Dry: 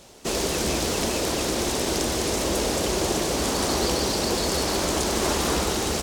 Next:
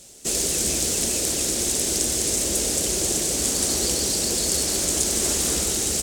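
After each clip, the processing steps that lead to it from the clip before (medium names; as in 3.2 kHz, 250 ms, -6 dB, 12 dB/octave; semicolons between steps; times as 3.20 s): ten-band graphic EQ 1 kHz -10 dB, 8 kHz +11 dB, 16 kHz +7 dB; trim -3 dB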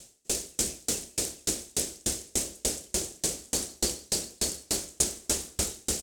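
doubling 30 ms -10.5 dB; sawtooth tremolo in dB decaying 3.4 Hz, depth 38 dB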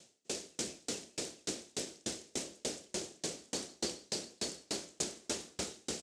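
band-pass 150–5400 Hz; trim -5 dB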